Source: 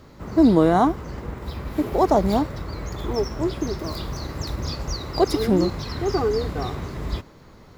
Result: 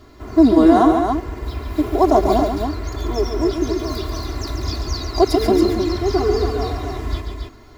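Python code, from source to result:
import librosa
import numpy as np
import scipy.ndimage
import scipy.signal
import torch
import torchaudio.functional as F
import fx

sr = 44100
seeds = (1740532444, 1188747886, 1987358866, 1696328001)

p1 = x + 0.99 * np.pad(x, (int(2.9 * sr / 1000.0), 0))[:len(x)]
p2 = p1 + fx.echo_multitap(p1, sr, ms=(140, 278), db=(-6.5, -5.5), dry=0)
y = p2 * 10.0 ** (-1.0 / 20.0)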